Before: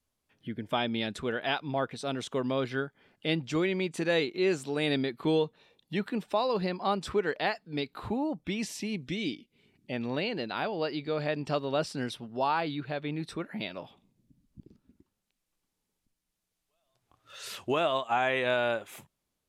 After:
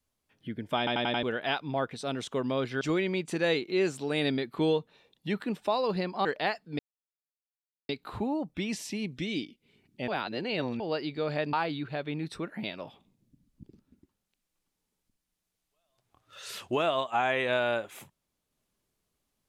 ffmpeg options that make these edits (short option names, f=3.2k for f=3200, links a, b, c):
-filter_complex "[0:a]asplit=12[a][b][c][d][e][f][g][h][i][j][k][l];[a]atrim=end=0.872[m];[b]atrim=start=0.778:end=0.872[n];[c]atrim=start=0.778:end=0.872[o];[d]atrim=start=0.778:end=0.872[p];[e]atrim=start=0.778:end=0.872[q];[f]atrim=start=1.228:end=2.812[r];[g]atrim=start=3.468:end=6.912[s];[h]atrim=start=7.248:end=7.79,asetpts=PTS-STARTPTS,afade=t=out:st=0.538:d=0.004:c=hsin,apad=pad_dur=1.1[t];[i]atrim=start=7.79:end=9.982,asetpts=PTS-STARTPTS,afade=t=in:d=0.004:c=hsin[u];[j]atrim=start=9.978:end=10.702,asetpts=PTS-STARTPTS,areverse[v];[k]atrim=start=10.698:end=11.432[w];[l]atrim=start=12.498[x];[m][n]acrossfade=d=0.004:c1=hsin:c2=hsin[y];[y][o]acrossfade=d=0.004:c1=hsin:c2=hsin[z];[z][p]acrossfade=d=0.004:c1=hsin:c2=hsin[aa];[aa][q]acrossfade=d=0.004:c1=hsin:c2=hsin[ab];[ab][r]acrossfade=d=0.004:c1=hsin:c2=hsin[ac];[ac][s]acrossfade=d=0.004:c1=hsin:c2=hsin[ad];[t][u]concat=n=2:v=0:a=1[ae];[ad][ae]acrossfade=d=0.004:c1=hsin:c2=hsin[af];[af][v]acrossfade=d=0.004:c1=hsin:c2=hsin[ag];[ag][w]acrossfade=d=0.004:c1=hsin:c2=hsin[ah];[ah][x]acrossfade=d=0.004:c1=hsin:c2=hsin"